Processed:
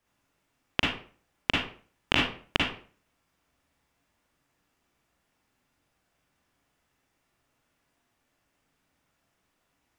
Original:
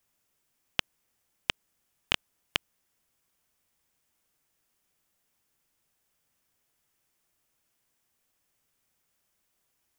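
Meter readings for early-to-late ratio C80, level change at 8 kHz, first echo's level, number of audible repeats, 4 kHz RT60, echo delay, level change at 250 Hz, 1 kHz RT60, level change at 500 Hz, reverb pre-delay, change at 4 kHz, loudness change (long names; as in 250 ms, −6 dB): 7.5 dB, −2.0 dB, no echo audible, no echo audible, 0.35 s, no echo audible, +13.5 dB, 0.40 s, +9.0 dB, 37 ms, +3.0 dB, +4.0 dB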